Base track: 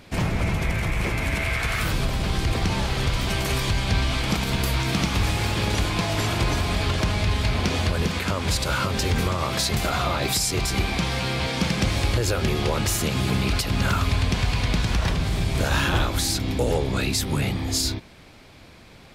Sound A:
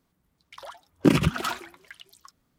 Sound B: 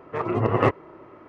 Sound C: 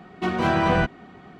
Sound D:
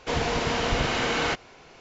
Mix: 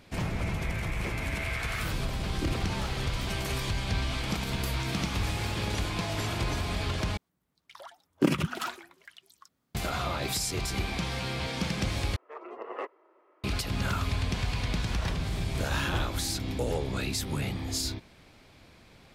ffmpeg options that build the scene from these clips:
ffmpeg -i bed.wav -i cue0.wav -i cue1.wav -filter_complex "[1:a]asplit=2[link_01][link_02];[0:a]volume=-7.5dB[link_03];[link_02]highpass=frequency=110:poles=1[link_04];[2:a]highpass=frequency=380:width=0.5412,highpass=frequency=380:width=1.3066[link_05];[link_03]asplit=3[link_06][link_07][link_08];[link_06]atrim=end=7.174[link_09];[link_04]atrim=end=2.58,asetpts=PTS-STARTPTS,volume=-5dB[link_10];[link_07]atrim=start=9.746:end=12.164[link_11];[link_05]atrim=end=1.28,asetpts=PTS-STARTPTS,volume=-15dB[link_12];[link_08]atrim=start=13.436[link_13];[link_01]atrim=end=2.58,asetpts=PTS-STARTPTS,volume=-16dB,afade=type=in:duration=0.004:curve=hsin,afade=type=out:start_time=2.576:duration=0.004:curve=hsin,adelay=1370[link_14];[link_09][link_10]acrossfade=duration=0.004:curve1=hsin:curve2=hsin[link_15];[link_15][link_11]acrossfade=duration=0.004:curve1=hsin:curve2=hsin[link_16];[link_16][link_12]acrossfade=duration=0.004:curve1=hsin:curve2=hsin[link_17];[link_17][link_13]acrossfade=duration=0.004:curve1=hsin:curve2=hsin[link_18];[link_18][link_14]amix=inputs=2:normalize=0" out.wav

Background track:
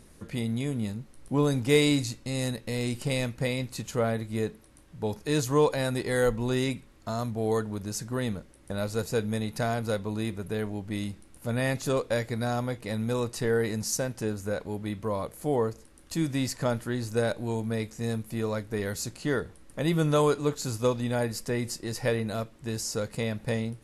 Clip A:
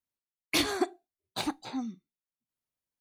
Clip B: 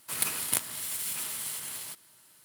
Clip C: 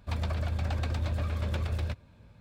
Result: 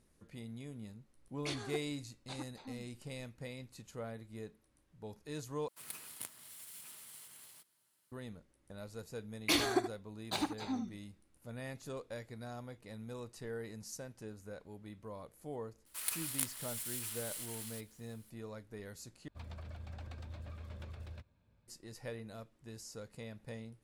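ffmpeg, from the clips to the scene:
ffmpeg -i bed.wav -i cue0.wav -i cue1.wav -i cue2.wav -filter_complex "[1:a]asplit=2[link_01][link_02];[2:a]asplit=2[link_03][link_04];[0:a]volume=-17dB[link_05];[link_01]aresample=22050,aresample=44100[link_06];[link_02]aecho=1:1:77:0.335[link_07];[link_04]highpass=frequency=1200:poles=1[link_08];[link_05]asplit=3[link_09][link_10][link_11];[link_09]atrim=end=5.684[link_12];[link_03]atrim=end=2.44,asetpts=PTS-STARTPTS,volume=-17.5dB[link_13];[link_10]atrim=start=8.116:end=19.284[link_14];[3:a]atrim=end=2.4,asetpts=PTS-STARTPTS,volume=-16.5dB[link_15];[link_11]atrim=start=21.676[link_16];[link_06]atrim=end=3,asetpts=PTS-STARTPTS,volume=-14.5dB,afade=type=in:duration=0.004:curve=hsin,afade=type=out:start_time=2.996:duration=0.004:curve=hsin,adelay=920[link_17];[link_07]atrim=end=3,asetpts=PTS-STARTPTS,volume=-3.5dB,afade=type=in:duration=0.004:curve=hsin,afade=type=out:start_time=2.996:duration=0.004:curve=hsin,adelay=8950[link_18];[link_08]atrim=end=2.44,asetpts=PTS-STARTPTS,volume=-8dB,afade=type=in:duration=0.004:curve=hsin,afade=type=out:start_time=2.436:duration=0.004:curve=hsin,adelay=15860[link_19];[link_12][link_13]acrossfade=duration=0.004:curve1=hsin:curve2=hsin[link_20];[link_20][link_14]acrossfade=duration=0.004:curve1=hsin:curve2=hsin[link_21];[link_21][link_15]acrossfade=duration=0.004:curve1=hsin:curve2=hsin[link_22];[link_22][link_16]acrossfade=duration=0.004:curve1=hsin:curve2=hsin[link_23];[link_23][link_17][link_18][link_19]amix=inputs=4:normalize=0" out.wav

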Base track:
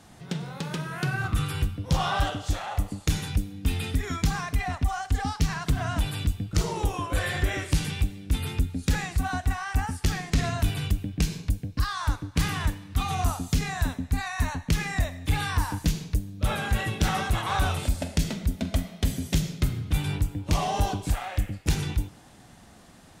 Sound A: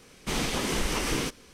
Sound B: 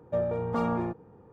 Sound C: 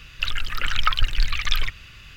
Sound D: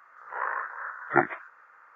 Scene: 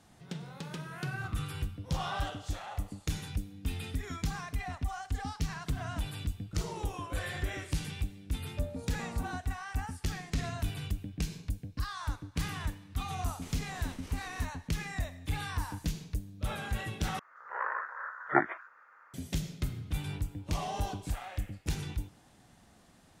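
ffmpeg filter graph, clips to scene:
ffmpeg -i bed.wav -i cue0.wav -i cue1.wav -i cue2.wav -i cue3.wav -filter_complex "[0:a]volume=-9dB[link_01];[1:a]acompressor=threshold=-31dB:ratio=6:attack=3.2:release=140:knee=1:detection=peak[link_02];[link_01]asplit=2[link_03][link_04];[link_03]atrim=end=17.194[link_05];[4:a]atrim=end=1.95,asetpts=PTS-STARTPTS,volume=-3.5dB[link_06];[link_04]atrim=start=19.136[link_07];[2:a]atrim=end=1.32,asetpts=PTS-STARTPTS,volume=-15.5dB,afade=type=in:duration=0.004:curve=hsin,afade=type=out:start_time=1.316:duration=0.004:curve=hsin,adelay=8450[link_08];[link_02]atrim=end=1.53,asetpts=PTS-STARTPTS,volume=-14dB,afade=type=in:duration=0.004:curve=hsin,afade=type=out:start_time=1.526:duration=0.004:curve=hsin,adelay=13150[link_09];[link_05][link_06]acrossfade=duration=0.004:curve1=hsin:curve2=hsin[link_10];[link_10][link_07]acrossfade=duration=0.004:curve1=hsin:curve2=hsin[link_11];[link_11][link_08][link_09]amix=inputs=3:normalize=0" out.wav

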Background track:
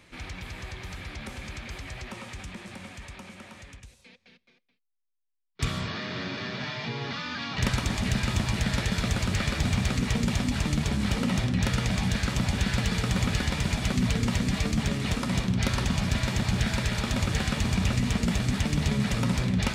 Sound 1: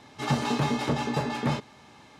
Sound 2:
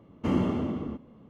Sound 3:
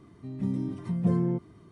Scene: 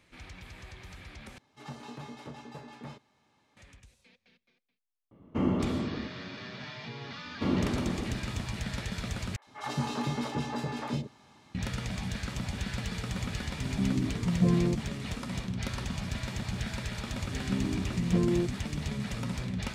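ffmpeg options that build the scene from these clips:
ffmpeg -i bed.wav -i cue0.wav -i cue1.wav -i cue2.wav -filter_complex "[1:a]asplit=2[link_01][link_02];[2:a]asplit=2[link_03][link_04];[3:a]asplit=2[link_05][link_06];[0:a]volume=-8.5dB[link_07];[link_03]highshelf=frequency=4600:gain=-9.5[link_08];[link_04]aecho=1:1:355:0.299[link_09];[link_02]acrossover=split=540|2200[link_10][link_11][link_12];[link_12]adelay=60[link_13];[link_10]adelay=110[link_14];[link_14][link_11][link_13]amix=inputs=3:normalize=0[link_15];[link_06]equalizer=frequency=360:width=3.8:gain=6.5[link_16];[link_07]asplit=3[link_17][link_18][link_19];[link_17]atrim=end=1.384[link_20];[link_01]atrim=end=2.19,asetpts=PTS-STARTPTS,volume=-17.5dB[link_21];[link_18]atrim=start=3.566:end=9.364[link_22];[link_15]atrim=end=2.19,asetpts=PTS-STARTPTS,volume=-5dB[link_23];[link_19]atrim=start=11.546[link_24];[link_08]atrim=end=1.29,asetpts=PTS-STARTPTS,volume=-2dB,afade=type=in:duration=0.004:curve=hsin,afade=type=out:start_time=1.286:duration=0.004:curve=hsin,adelay=5110[link_25];[link_09]atrim=end=1.29,asetpts=PTS-STARTPTS,volume=-3dB,afade=type=in:duration=0.004:curve=hsin,afade=type=out:start_time=1.286:duration=0.004:curve=hsin,adelay=7170[link_26];[link_05]atrim=end=1.71,asetpts=PTS-STARTPTS,afade=type=in:duration=0.004:curve=hsin,afade=type=out:start_time=1.706:duration=0.004:curve=hsin,adelay=13370[link_27];[link_16]atrim=end=1.71,asetpts=PTS-STARTPTS,volume=-3dB,afade=type=in:duration=0.004:curve=hsin,afade=type=out:start_time=1.706:duration=0.004:curve=hsin,adelay=17080[link_28];[link_20][link_21]acrossfade=duration=0.004:curve1=hsin:curve2=hsin[link_29];[link_29][link_22]acrossfade=duration=0.004:curve1=hsin:curve2=hsin[link_30];[link_30][link_23]acrossfade=duration=0.004:curve1=hsin:curve2=hsin[link_31];[link_31][link_24]acrossfade=duration=0.004:curve1=hsin:curve2=hsin[link_32];[link_32][link_25][link_26][link_27][link_28]amix=inputs=5:normalize=0" out.wav

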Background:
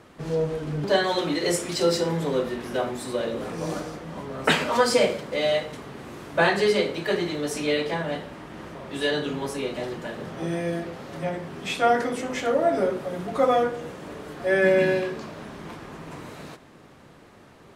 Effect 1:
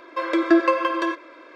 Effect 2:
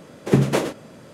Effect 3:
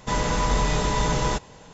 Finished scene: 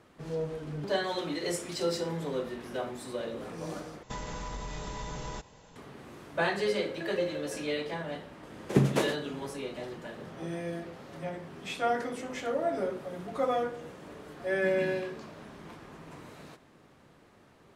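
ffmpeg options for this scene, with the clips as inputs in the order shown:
ffmpeg -i bed.wav -i cue0.wav -i cue1.wav -i cue2.wav -filter_complex "[0:a]volume=-8.5dB[link_01];[3:a]acompressor=threshold=-32dB:ratio=4:attack=86:release=80:knee=1:detection=rms[link_02];[1:a]asplit=3[link_03][link_04][link_05];[link_03]bandpass=frequency=530:width_type=q:width=8,volume=0dB[link_06];[link_04]bandpass=frequency=1840:width_type=q:width=8,volume=-6dB[link_07];[link_05]bandpass=frequency=2480:width_type=q:width=8,volume=-9dB[link_08];[link_06][link_07][link_08]amix=inputs=3:normalize=0[link_09];[link_01]asplit=2[link_10][link_11];[link_10]atrim=end=4.034[link_12];[link_02]atrim=end=1.73,asetpts=PTS-STARTPTS,volume=-8.5dB[link_13];[link_11]atrim=start=5.756[link_14];[link_09]atrim=end=1.55,asetpts=PTS-STARTPTS,volume=-8dB,afade=type=in:duration=0.004:curve=hsin,afade=type=out:start_time=1.546:duration=0.004:curve=hsin,adelay=286650S[link_15];[2:a]atrim=end=1.13,asetpts=PTS-STARTPTS,volume=-7dB,afade=type=in:duration=0.004:curve=hsin,afade=type=out:start_time=1.126:duration=0.004:curve=hsin,adelay=8430[link_16];[link_12][link_13]acrossfade=duration=0.004:curve1=hsin:curve2=hsin[link_17];[link_17][link_14]acrossfade=duration=0.004:curve1=hsin:curve2=hsin[link_18];[link_18][link_15][link_16]amix=inputs=3:normalize=0" out.wav

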